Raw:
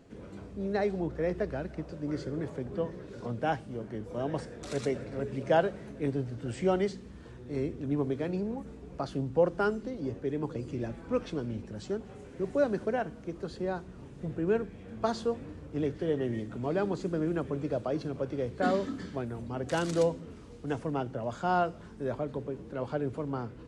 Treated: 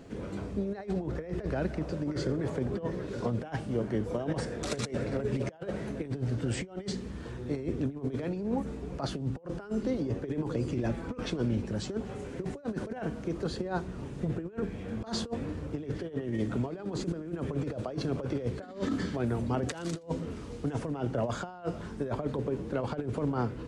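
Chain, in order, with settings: negative-ratio compressor -35 dBFS, ratio -0.5; gain +3.5 dB

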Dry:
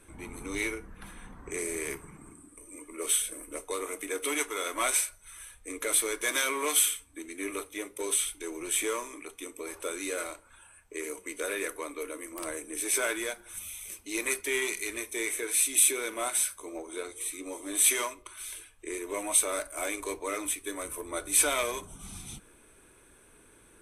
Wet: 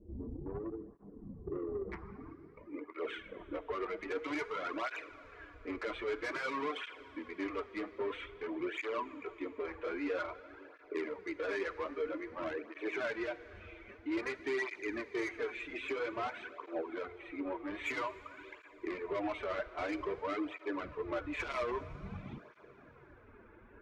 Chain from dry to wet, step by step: inverse Chebyshev low-pass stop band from 2700 Hz, stop band 80 dB, from 1.92 s stop band from 10000 Hz; reverb removal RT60 1.1 s; limiter -28.5 dBFS, peak gain reduction 9.5 dB; soft clip -36.5 dBFS, distortion -12 dB; plate-style reverb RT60 4.4 s, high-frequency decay 0.9×, DRR 13 dB; tape flanging out of phase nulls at 0.51 Hz, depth 7.6 ms; gain +7.5 dB

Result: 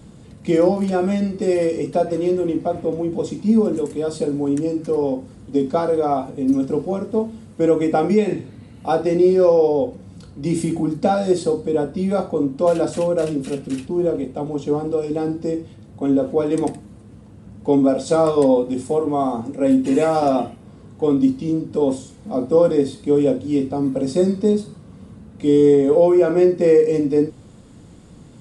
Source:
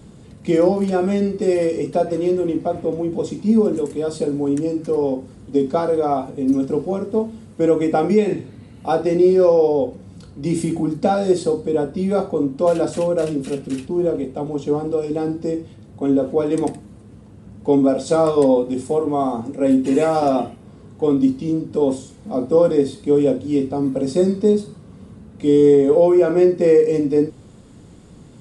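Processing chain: notch 400 Hz, Q 12

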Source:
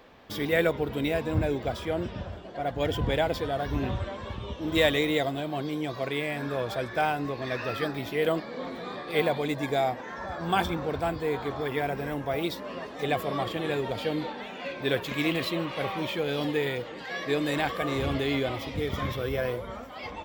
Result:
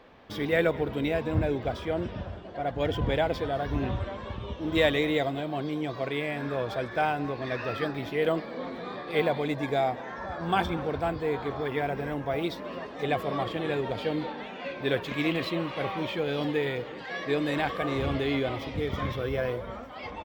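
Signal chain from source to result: high shelf 6300 Hz -11.5 dB; notch 7200 Hz, Q 29; echo 0.213 s -20.5 dB

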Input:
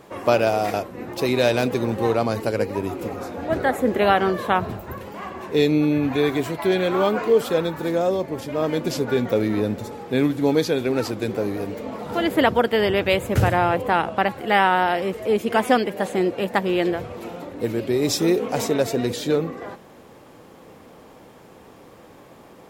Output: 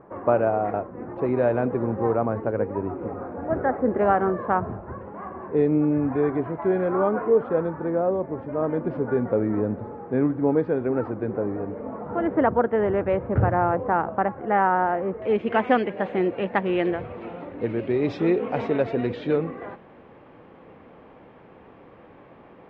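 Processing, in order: LPF 1500 Hz 24 dB/oct, from 15.22 s 2700 Hz; gain -2 dB

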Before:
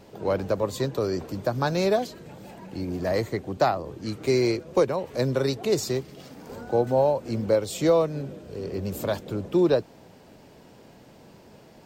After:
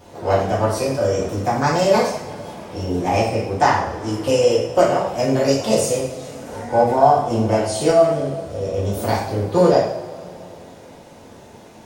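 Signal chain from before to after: formant shift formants +4 st; two-slope reverb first 0.6 s, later 3.6 s, from -21 dB, DRR -5.5 dB; gain +1 dB

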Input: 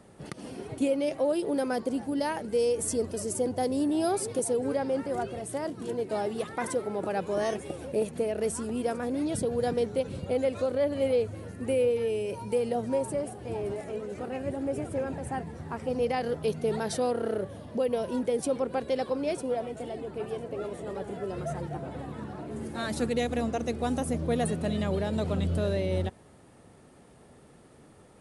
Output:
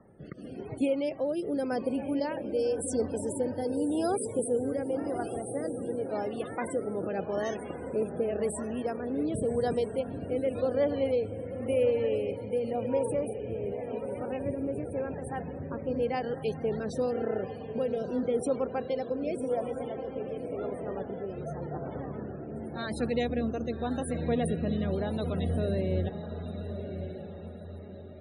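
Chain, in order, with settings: rotary speaker horn 0.9 Hz; diffused feedback echo 1.166 s, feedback 42%, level -8 dB; loudest bins only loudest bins 64

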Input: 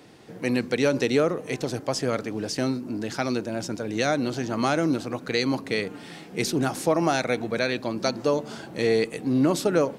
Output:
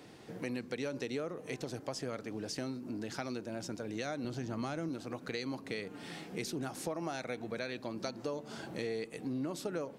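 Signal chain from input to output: 4.24–4.89 low shelf 160 Hz +10.5 dB; compressor 3:1, threshold -35 dBFS, peak gain reduction 14 dB; gain -3.5 dB

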